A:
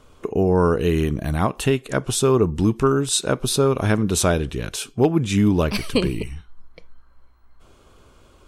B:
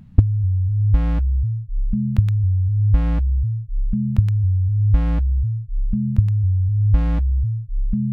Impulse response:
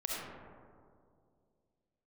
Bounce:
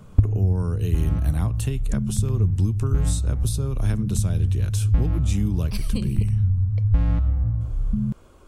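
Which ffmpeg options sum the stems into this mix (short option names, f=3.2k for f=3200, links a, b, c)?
-filter_complex "[0:a]equalizer=f=3.6k:t=o:w=1.9:g=-6.5,acrossover=split=150|3000[a][b][c];[b]acompressor=threshold=-43dB:ratio=2[d];[a][d][c]amix=inputs=3:normalize=0,volume=1dB,asplit=2[e][f];[1:a]volume=-5dB,asplit=2[g][h];[h]volume=-9.5dB[i];[f]apad=whole_len=362629[j];[g][j]sidechaincompress=threshold=-26dB:ratio=8:attack=16:release=272[k];[2:a]atrim=start_sample=2205[l];[i][l]afir=irnorm=-1:irlink=0[m];[e][k][m]amix=inputs=3:normalize=0,acrossover=split=240[n][o];[o]acompressor=threshold=-32dB:ratio=4[p];[n][p]amix=inputs=2:normalize=0"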